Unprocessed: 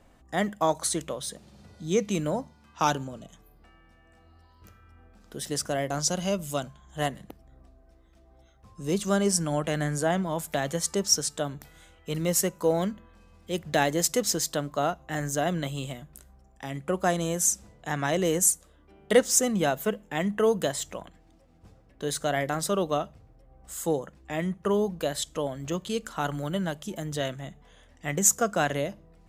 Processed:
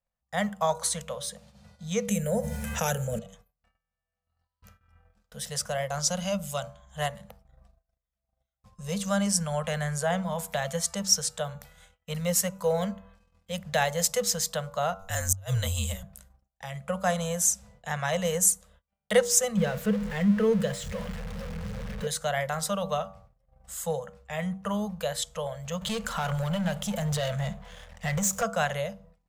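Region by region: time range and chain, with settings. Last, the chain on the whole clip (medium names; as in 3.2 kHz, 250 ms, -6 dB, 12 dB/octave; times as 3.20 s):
2.08–3.19 s: FFT filter 190 Hz 0 dB, 320 Hz +12 dB, 500 Hz +3 dB, 1.1 kHz -16 dB, 1.7 kHz 0 dB, 4.7 kHz -11 dB, 7 kHz +4 dB, 11 kHz +11 dB + level flattener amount 70%
14.99–16.03 s: tone controls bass +7 dB, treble +13 dB + inverted gate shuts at -10 dBFS, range -39 dB + frequency shift -53 Hz
19.57–22.07 s: jump at every zero crossing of -28 dBFS + FFT filter 140 Hz 0 dB, 230 Hz +7 dB, 400 Hz +9 dB, 680 Hz -11 dB, 980 Hz -7 dB, 1.7 kHz -4 dB, 12 kHz -14 dB
25.81–28.43 s: compression 2.5:1, threshold -33 dBFS + tone controls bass +1 dB, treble -3 dB + waveshaping leveller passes 3
whole clip: elliptic band-stop 210–480 Hz; de-hum 96.09 Hz, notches 15; gate -53 dBFS, range -30 dB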